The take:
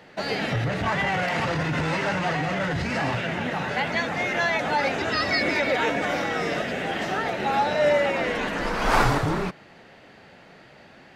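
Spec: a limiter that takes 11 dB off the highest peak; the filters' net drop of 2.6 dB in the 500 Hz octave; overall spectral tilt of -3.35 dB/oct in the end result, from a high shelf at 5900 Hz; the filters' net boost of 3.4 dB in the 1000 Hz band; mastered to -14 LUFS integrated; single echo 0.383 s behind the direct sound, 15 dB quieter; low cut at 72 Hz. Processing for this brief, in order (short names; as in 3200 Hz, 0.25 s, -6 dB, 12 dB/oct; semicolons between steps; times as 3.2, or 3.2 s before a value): HPF 72 Hz; bell 500 Hz -5.5 dB; bell 1000 Hz +6.5 dB; high shelf 5900 Hz -9 dB; limiter -16 dBFS; echo 0.383 s -15 dB; gain +11.5 dB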